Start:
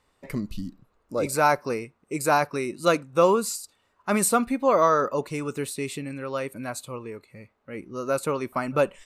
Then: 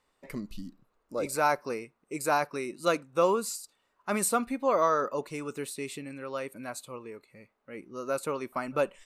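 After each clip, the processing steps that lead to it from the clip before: bell 82 Hz -9.5 dB 1.7 oct; gain -5 dB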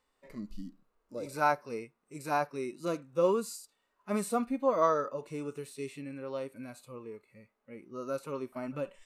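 harmonic-percussive split percussive -16 dB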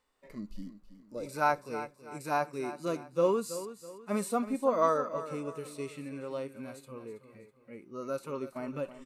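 feedback echo 0.326 s, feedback 38%, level -13 dB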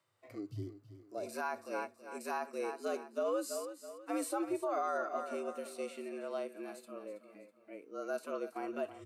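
limiter -24.5 dBFS, peak gain reduction 10.5 dB; frequency shift +95 Hz; gain -2 dB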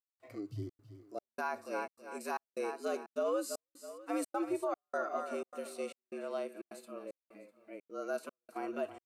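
step gate "..xxxxx.xxxx" 152 bpm -60 dB; gain +1 dB

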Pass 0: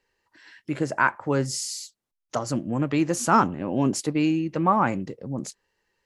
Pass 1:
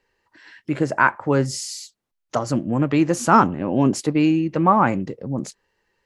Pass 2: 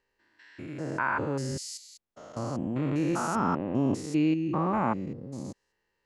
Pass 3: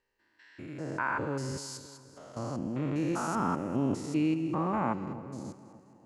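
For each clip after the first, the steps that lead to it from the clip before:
high shelf 4200 Hz -6.5 dB; gain +5 dB
stepped spectrum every 0.2 s; gain -6.5 dB
split-band echo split 880 Hz, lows 0.286 s, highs 0.205 s, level -15 dB; gain -3 dB

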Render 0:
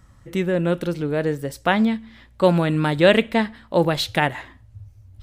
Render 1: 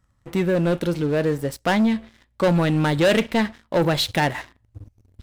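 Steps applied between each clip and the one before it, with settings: sample leveller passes 3; gain -8.5 dB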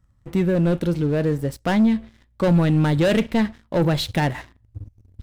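low shelf 280 Hz +10 dB; gain -4 dB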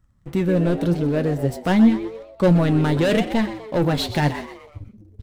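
frequency-shifting echo 0.125 s, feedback 44%, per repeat +110 Hz, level -12.5 dB; flange 0.88 Hz, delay 2.7 ms, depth 8.3 ms, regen +61%; gain +4.5 dB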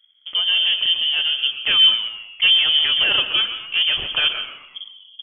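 inverted band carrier 3300 Hz; reverb RT60 0.60 s, pre-delay 0.11 s, DRR 12.5 dB

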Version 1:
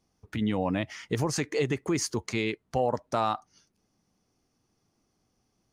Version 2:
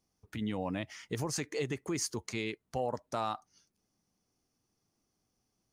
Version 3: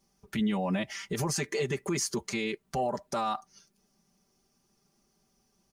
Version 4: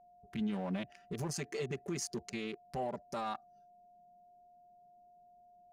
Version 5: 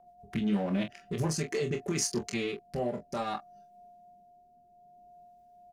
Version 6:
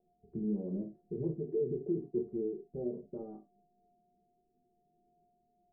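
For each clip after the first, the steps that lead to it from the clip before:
high shelf 5800 Hz +7.5 dB; gain -7.5 dB
comb 5.1 ms, depth 93%; limiter -27.5 dBFS, peak gain reduction 8 dB; gain +6 dB
Wiener smoothing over 41 samples; whine 710 Hz -53 dBFS; gain -6.5 dB
rotary speaker horn 8 Hz, later 0.6 Hz, at 0.92; on a send: early reflections 25 ms -6.5 dB, 44 ms -12 dB; on the sum: gain +8.5 dB
ladder low-pass 440 Hz, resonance 60%; on a send at -6 dB: reverb, pre-delay 5 ms

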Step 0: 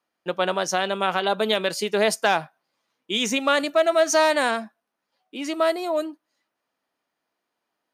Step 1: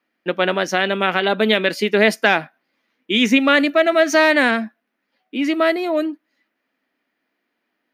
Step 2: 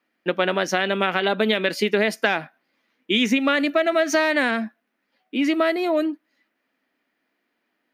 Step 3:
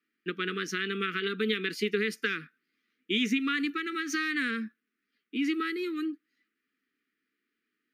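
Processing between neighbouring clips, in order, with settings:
graphic EQ 125/250/1000/2000/8000 Hz -6/+10/-5/+9/-11 dB; gain +3.5 dB
compressor, threshold -16 dBFS, peak gain reduction 7.5 dB
Chebyshev band-stop 450–1200 Hz, order 4; gain -7.5 dB

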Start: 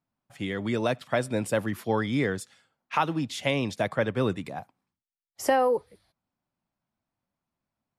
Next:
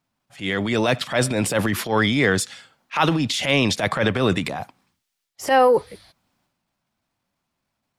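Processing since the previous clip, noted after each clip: de-esser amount 75%; bell 3800 Hz +6 dB 2.7 oct; transient shaper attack -10 dB, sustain +7 dB; gain +7 dB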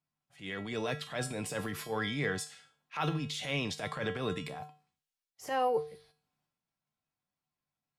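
resonator 150 Hz, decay 0.39 s, harmonics odd, mix 80%; gain -3.5 dB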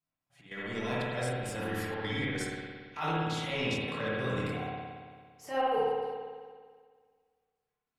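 chorus voices 6, 0.26 Hz, delay 25 ms, depth 2.1 ms; step gate "x.xx.xxxx" 147 bpm -12 dB; reverb RT60 1.8 s, pre-delay 56 ms, DRR -6 dB

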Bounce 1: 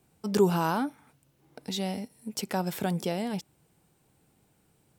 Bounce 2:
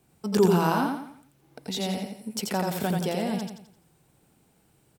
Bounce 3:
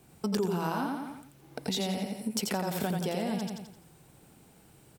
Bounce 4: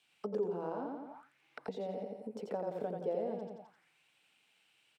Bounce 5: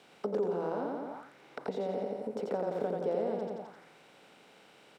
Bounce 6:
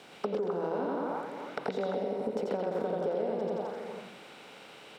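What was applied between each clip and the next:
feedback echo 86 ms, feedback 39%, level -3.5 dB; gain +1.5 dB
compressor 5:1, threshold -35 dBFS, peak gain reduction 17 dB; gain +6 dB
notch 380 Hz, Q 12; auto-wah 480–3300 Hz, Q 3.1, down, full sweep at -33 dBFS; gain +2.5 dB
per-bin compression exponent 0.6; gain +1.5 dB
compressor, threshold -36 dBFS, peak gain reduction 9 dB; delay with a stepping band-pass 0.129 s, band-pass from 3100 Hz, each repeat -1.4 oct, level 0 dB; gain +7 dB

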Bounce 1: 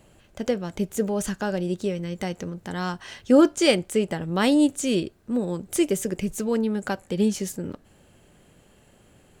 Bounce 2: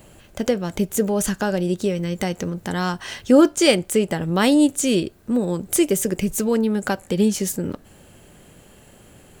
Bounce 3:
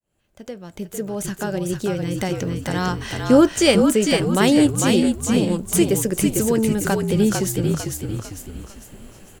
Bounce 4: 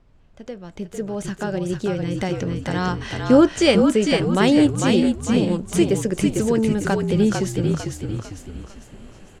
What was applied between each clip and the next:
high shelf 12000 Hz +10.5 dB; in parallel at -0.5 dB: compressor, threshold -29 dBFS, peak gain reduction 16.5 dB; on the sum: gain +1.5 dB
opening faded in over 2.37 s; frequency-shifting echo 0.45 s, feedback 43%, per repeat -48 Hz, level -4 dB
added noise brown -53 dBFS; air absorption 73 m

